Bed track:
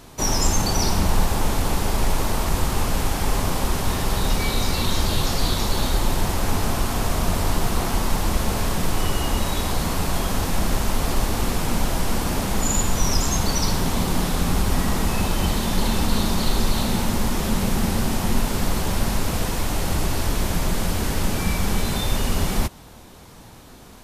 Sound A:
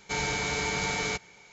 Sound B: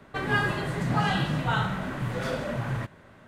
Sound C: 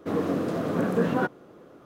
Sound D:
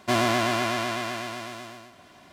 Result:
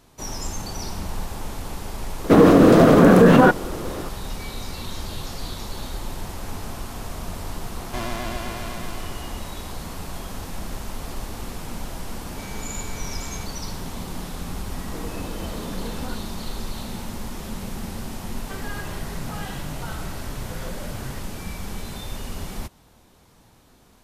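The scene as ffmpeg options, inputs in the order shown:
ffmpeg -i bed.wav -i cue0.wav -i cue1.wav -i cue2.wav -i cue3.wav -filter_complex "[3:a]asplit=2[link_01][link_02];[0:a]volume=-10.5dB[link_03];[link_01]alimiter=level_in=20.5dB:limit=-1dB:release=50:level=0:latency=1[link_04];[1:a]aecho=1:1:7.5:0.8[link_05];[link_02]acompressor=threshold=-32dB:ratio=6:attack=3.2:release=140:knee=1:detection=peak[link_06];[2:a]alimiter=limit=-19dB:level=0:latency=1:release=71[link_07];[link_04]atrim=end=1.85,asetpts=PTS-STARTPTS,volume=-2.5dB,afade=type=in:duration=0.004:curve=hsin,afade=type=out:start_time=1.846:duration=0.004:curve=hsin,adelay=2240[link_08];[4:a]atrim=end=2.32,asetpts=PTS-STARTPTS,volume=-8.5dB,afade=type=in:duration=0.004:curve=hsin,afade=type=out:start_time=2.316:duration=0.004:curve=hsin,adelay=7850[link_09];[link_05]atrim=end=1.52,asetpts=PTS-STARTPTS,volume=-14dB,afade=type=in:duration=0.004:curve=hsin,afade=type=out:start_time=1.516:duration=0.004:curve=hsin,adelay=12280[link_10];[link_06]atrim=end=1.85,asetpts=PTS-STARTPTS,volume=-1dB,afade=type=in:duration=0.004:curve=hsin,afade=type=out:start_time=1.846:duration=0.004:curve=hsin,adelay=14880[link_11];[link_07]atrim=end=3.27,asetpts=PTS-STARTPTS,volume=-7.5dB,afade=type=in:duration=0.004:curve=hsin,afade=type=out:start_time=3.266:duration=0.004:curve=hsin,adelay=18350[link_12];[link_03][link_08][link_09][link_10][link_11][link_12]amix=inputs=6:normalize=0" out.wav

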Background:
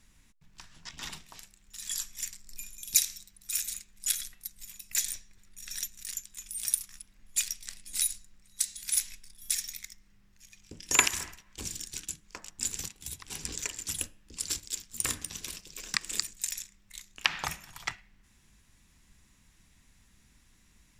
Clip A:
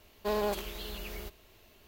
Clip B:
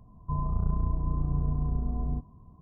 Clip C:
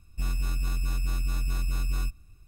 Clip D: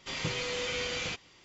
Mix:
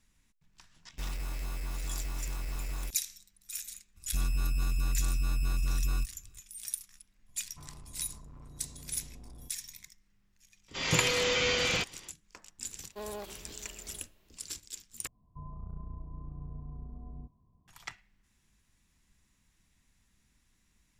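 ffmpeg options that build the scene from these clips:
ffmpeg -i bed.wav -i cue0.wav -i cue1.wav -i cue2.wav -i cue3.wav -filter_complex "[3:a]asplit=2[link_01][link_02];[2:a]asplit=2[link_03][link_04];[0:a]volume=-8dB[link_05];[link_01]acrusher=bits=5:mix=0:aa=0.000001[link_06];[link_03]asoftclip=type=hard:threshold=-32.5dB[link_07];[4:a]dynaudnorm=framelen=100:gausssize=3:maxgain=6dB[link_08];[link_05]asplit=2[link_09][link_10];[link_09]atrim=end=15.074[link_11];[link_04]atrim=end=2.61,asetpts=PTS-STARTPTS,volume=-15dB[link_12];[link_10]atrim=start=17.676[link_13];[link_06]atrim=end=2.47,asetpts=PTS-STARTPTS,volume=-9dB,afade=type=in:duration=0.004:curve=hsin,afade=type=out:start_time=2.466:duration=0.004:curve=hsin,adelay=800[link_14];[link_02]atrim=end=2.47,asetpts=PTS-STARTPTS,volume=-2dB,afade=type=in:duration=0.02,afade=type=out:start_time=2.45:duration=0.02,adelay=3950[link_15];[link_07]atrim=end=2.61,asetpts=PTS-STARTPTS,volume=-15dB,afade=type=in:duration=0.004:curve=hsin,afade=type=out:start_time=2.606:duration=0.004:curve=hsin,adelay=7280[link_16];[link_08]atrim=end=1.44,asetpts=PTS-STARTPTS,volume=-0.5dB,afade=type=in:duration=0.004:curve=hsin,afade=type=out:start_time=1.436:duration=0.004:curve=hsin,adelay=10680[link_17];[1:a]atrim=end=1.87,asetpts=PTS-STARTPTS,volume=-10.5dB,afade=type=in:duration=0.004:curve=hsin,afade=type=out:start_time=1.866:duration=0.004:curve=hsin,adelay=12710[link_18];[link_11][link_12]acrossfade=duration=0.004:curve1=hsin:curve2=hsin[link_19];[link_19][link_13]acrossfade=duration=0.004:curve1=hsin:curve2=hsin[link_20];[link_20][link_14][link_15][link_16][link_17][link_18]amix=inputs=6:normalize=0" out.wav

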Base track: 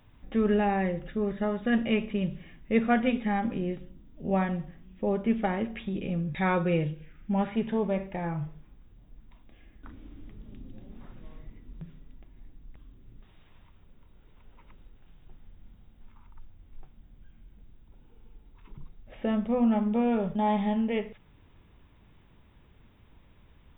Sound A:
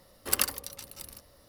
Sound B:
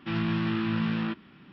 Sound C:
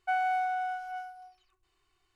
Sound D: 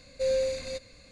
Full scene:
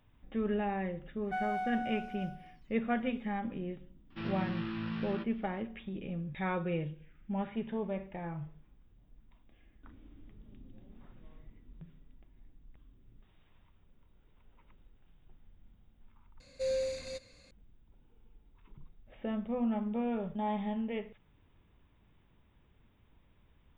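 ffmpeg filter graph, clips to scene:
ffmpeg -i bed.wav -i cue0.wav -i cue1.wav -i cue2.wav -i cue3.wav -filter_complex "[0:a]volume=-8dB[link_01];[2:a]acontrast=48[link_02];[link_01]asplit=2[link_03][link_04];[link_03]atrim=end=16.404[link_05];[4:a]atrim=end=1.11,asetpts=PTS-STARTPTS,volume=-6dB[link_06];[link_04]atrim=start=17.506[link_07];[3:a]atrim=end=2.15,asetpts=PTS-STARTPTS,volume=-6.5dB,afade=type=in:duration=0.004:curve=hsin,afade=type=out:start_time=2.146:duration=0.004:curve=hsin,adelay=1240[link_08];[link_02]atrim=end=1.52,asetpts=PTS-STARTPTS,volume=-15.5dB,afade=type=in:duration=0.004:curve=hsin,afade=type=out:start_time=1.516:duration=0.004:curve=hsin,adelay=4100[link_09];[link_05][link_06]acrossfade=duration=0.004:curve1=hsin:curve2=hsin[link_10];[link_10][link_07]acrossfade=duration=0.004:curve1=hsin:curve2=hsin[link_11];[link_11][link_08][link_09]amix=inputs=3:normalize=0" out.wav

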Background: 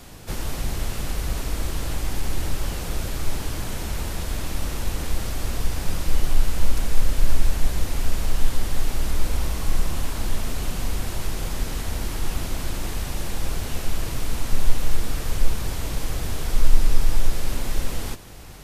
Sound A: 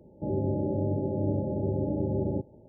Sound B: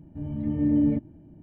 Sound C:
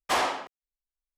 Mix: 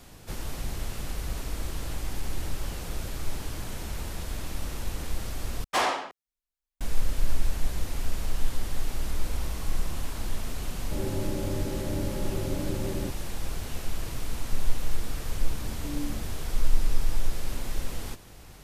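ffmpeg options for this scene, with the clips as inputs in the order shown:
ffmpeg -i bed.wav -i cue0.wav -i cue1.wav -i cue2.wav -filter_complex "[0:a]volume=-6.5dB[link_01];[2:a]asplit=2[link_02][link_03];[link_03]adelay=4.8,afreqshift=-2.4[link_04];[link_02][link_04]amix=inputs=2:normalize=1[link_05];[link_01]asplit=2[link_06][link_07];[link_06]atrim=end=5.644[link_08];[3:a]atrim=end=1.17[link_09];[link_07]atrim=start=6.806[link_10];[1:a]atrim=end=2.68,asetpts=PTS-STARTPTS,volume=-4dB,afade=type=in:duration=0.004:curve=hsin,afade=type=out:start_time=2.676:duration=0.004:curve=hsin,adelay=10690[link_11];[link_05]atrim=end=1.42,asetpts=PTS-STARTPTS,volume=-12.5dB,afade=type=in:duration=0.004:curve=hsin,afade=type=out:start_time=1.416:duration=0.004:curve=hsin,adelay=15230[link_12];[link_08][link_09]acrossfade=duration=0.004:curve1=hsin:curve2=hsin[link_13];[link_13][link_10]acrossfade=duration=0.004:curve1=hsin:curve2=hsin[link_14];[link_14][link_11][link_12]amix=inputs=3:normalize=0" out.wav

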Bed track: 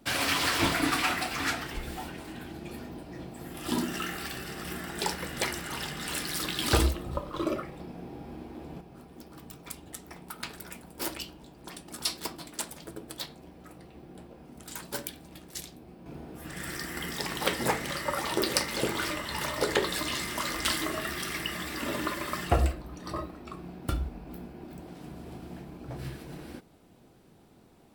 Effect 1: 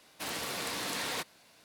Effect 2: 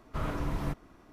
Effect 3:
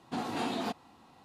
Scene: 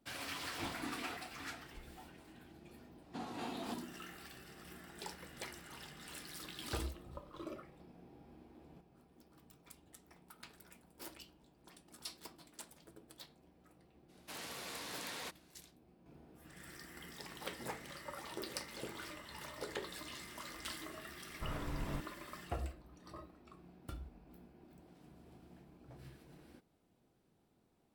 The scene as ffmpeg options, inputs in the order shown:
ffmpeg -i bed.wav -i cue0.wav -i cue1.wav -i cue2.wav -filter_complex "[3:a]asplit=2[link_01][link_02];[0:a]volume=-16.5dB[link_03];[link_01]asplit=2[link_04][link_05];[link_05]afreqshift=1.7[link_06];[link_04][link_06]amix=inputs=2:normalize=1,atrim=end=1.24,asetpts=PTS-STARTPTS,volume=-12.5dB,afade=type=in:duration=0.004:curve=hsin,afade=type=out:start_time=1.236:duration=0.004:curve=hsin,adelay=450[link_07];[link_02]atrim=end=1.24,asetpts=PTS-STARTPTS,volume=-10dB,afade=type=in:duration=0.004:curve=hsin,afade=type=out:start_time=1.236:duration=0.004:curve=hsin,adelay=3020[link_08];[1:a]atrim=end=1.64,asetpts=PTS-STARTPTS,volume=-10dB,afade=type=in:duration=0.02,afade=type=out:start_time=1.62:duration=0.02,adelay=14080[link_09];[2:a]atrim=end=1.12,asetpts=PTS-STARTPTS,volume=-8.5dB,afade=type=in:duration=0.004:curve=hsin,afade=type=out:start_time=1.116:duration=0.004:curve=hsin,adelay=21270[link_10];[link_03][link_07][link_08][link_09][link_10]amix=inputs=5:normalize=0" out.wav

